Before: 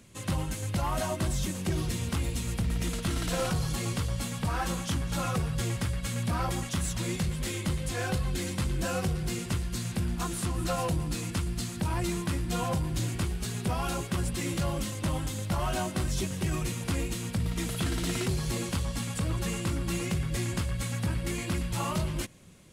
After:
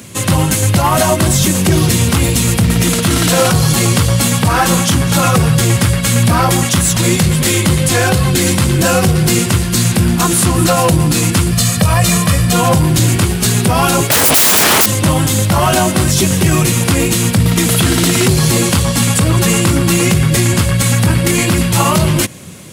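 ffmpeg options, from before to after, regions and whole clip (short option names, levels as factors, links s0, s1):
-filter_complex "[0:a]asettb=1/sr,asplit=3[s0][s1][s2];[s0]atrim=end=11.514[s3];[s1]atrim=start=11.51:end=12.53,asetpts=PTS-STARTPTS,afade=t=in:d=0.004:c=qsin,afade=t=out:st=1.016:d=0.004:c=qsin,bandreject=f=360:w=5,aecho=1:1:1.7:0.65,atrim=end_sample=44982[s4];[s2]atrim=start=12.526[s5];[s3][s4]acrossfade=d=0.004:c1=hsin:c2=qsin[s6];[s6][s5]acrossfade=d=0.004:c1=qsin:c2=hsin,asettb=1/sr,asplit=3[s7][s8][s9];[s7]atrim=end=14.104[s10];[s8]atrim=start=14.1:end=14.86,asetpts=PTS-STARTPTS,afade=t=in:d=0.004:c=qsin,afade=t=out:st=0.756:d=0.004:c=qsin,lowshelf=f=76:g=-7,acompressor=threshold=0.0282:ratio=4:attack=3.2:release=140:knee=1:detection=peak,aeval=exprs='0.0708*sin(PI/2*8.91*val(0)/0.0708)':c=same[s11];[s9]atrim=start=14.856[s12];[s10][s11]acrossfade=d=0.004:c1=hsin:c2=qsin[s13];[s13][s12]acrossfade=d=0.004:c1=qsin:c2=hsin,highpass=f=81:w=0.5412,highpass=f=81:w=1.3066,highshelf=f=9900:g=7.5,alimiter=level_in=13.3:limit=0.891:release=50:level=0:latency=1,volume=0.891"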